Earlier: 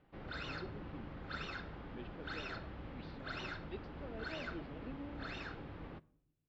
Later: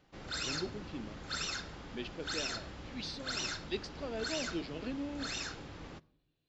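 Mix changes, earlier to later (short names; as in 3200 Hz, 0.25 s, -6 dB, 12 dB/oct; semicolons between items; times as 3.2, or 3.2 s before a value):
speech +8.5 dB; master: remove air absorption 410 m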